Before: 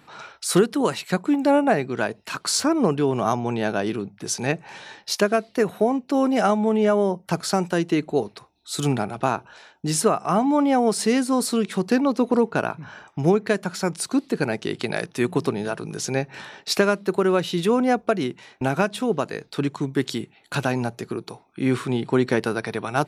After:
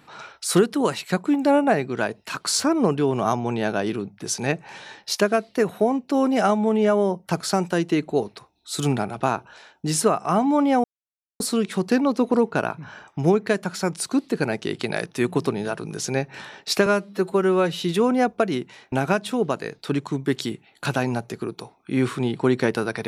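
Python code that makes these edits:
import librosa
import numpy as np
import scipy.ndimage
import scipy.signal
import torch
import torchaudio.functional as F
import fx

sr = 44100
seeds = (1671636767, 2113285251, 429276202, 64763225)

y = fx.edit(x, sr, fx.silence(start_s=10.84, length_s=0.56),
    fx.stretch_span(start_s=16.86, length_s=0.62, factor=1.5), tone=tone)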